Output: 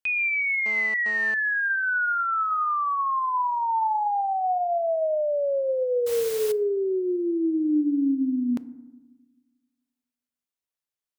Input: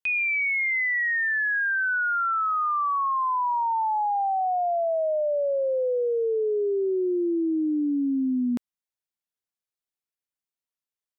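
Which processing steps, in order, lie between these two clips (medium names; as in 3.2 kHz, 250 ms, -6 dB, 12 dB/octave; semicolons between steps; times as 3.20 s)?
2.64–3.38 s: Chebyshev high-pass 520 Hz, order 2; 6.06–6.52 s: modulation noise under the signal 12 dB; FDN reverb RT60 1.1 s, low-frequency decay 1.5×, high-frequency decay 0.35×, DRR 15.5 dB; 0.66–1.34 s: mobile phone buzz -40 dBFS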